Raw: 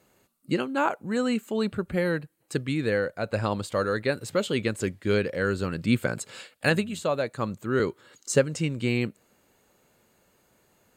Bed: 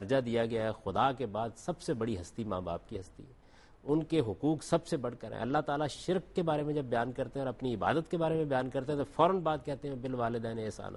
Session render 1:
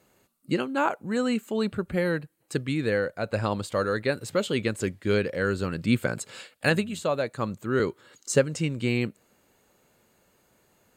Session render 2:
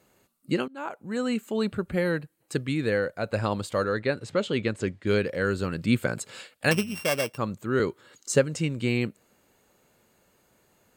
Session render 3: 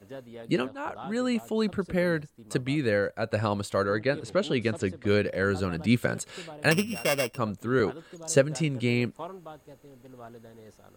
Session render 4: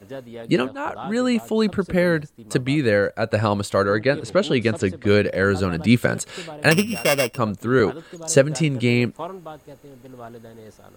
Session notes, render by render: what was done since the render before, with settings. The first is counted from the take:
no processing that can be heard
0:00.68–0:01.68: fade in equal-power, from −22.5 dB; 0:03.84–0:05.07: high-frequency loss of the air 74 metres; 0:06.71–0:07.38: samples sorted by size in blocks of 16 samples
mix in bed −12.5 dB
level +7 dB; brickwall limiter −3 dBFS, peak gain reduction 1.5 dB

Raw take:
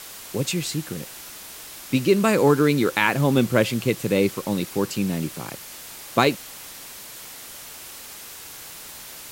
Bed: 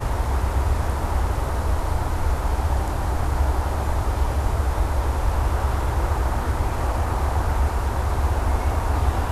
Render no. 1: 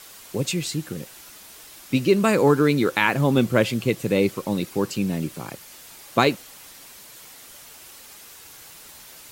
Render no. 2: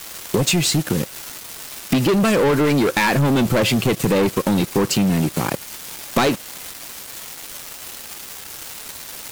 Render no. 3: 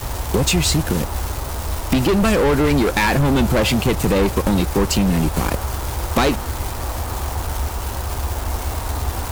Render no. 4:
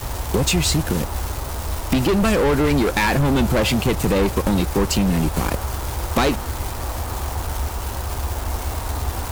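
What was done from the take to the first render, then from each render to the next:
broadband denoise 6 dB, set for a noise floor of −40 dBFS
leveller curve on the samples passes 5; downward compressor 6 to 1, threshold −16 dBFS, peak gain reduction 10 dB
mix in bed −2.5 dB
level −1.5 dB

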